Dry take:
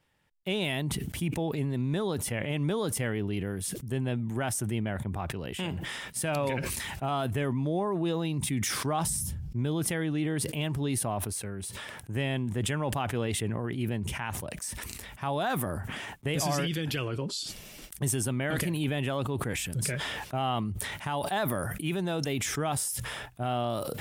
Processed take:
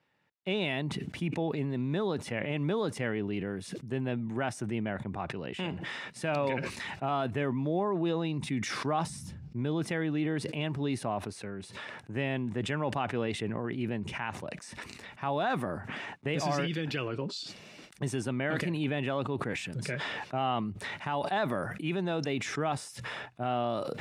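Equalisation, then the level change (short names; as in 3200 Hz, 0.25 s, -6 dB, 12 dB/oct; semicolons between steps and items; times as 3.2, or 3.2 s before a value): BPF 150–4200 Hz; notch 3200 Hz, Q 11; 0.0 dB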